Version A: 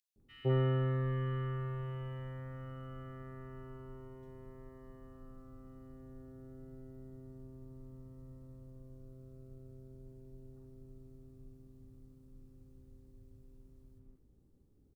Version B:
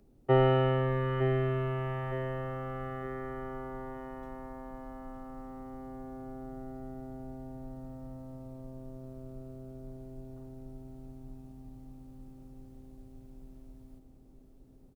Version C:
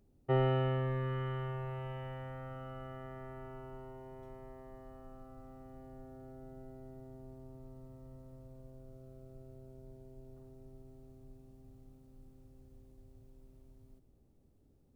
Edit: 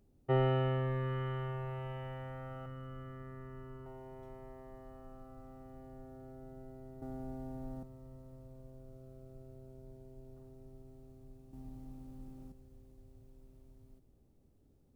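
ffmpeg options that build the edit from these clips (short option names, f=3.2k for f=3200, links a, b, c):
-filter_complex "[1:a]asplit=2[a][b];[2:a]asplit=4[c][d][e][f];[c]atrim=end=2.662[g];[0:a]atrim=start=2.658:end=3.862[h];[d]atrim=start=3.858:end=7.022[i];[a]atrim=start=7.018:end=7.832[j];[e]atrim=start=7.828:end=11.532[k];[b]atrim=start=11.528:end=12.522[l];[f]atrim=start=12.518[m];[g][h]acrossfade=d=0.004:c1=hsin:c2=hsin[n];[n][i]acrossfade=d=0.004:c1=hsin:c2=hsin[o];[o][j]acrossfade=d=0.004:c1=hsin:c2=hsin[p];[p][k]acrossfade=d=0.004:c1=hsin:c2=hsin[q];[q][l]acrossfade=d=0.004:c1=hsin:c2=hsin[r];[r][m]acrossfade=d=0.004:c1=hsin:c2=hsin"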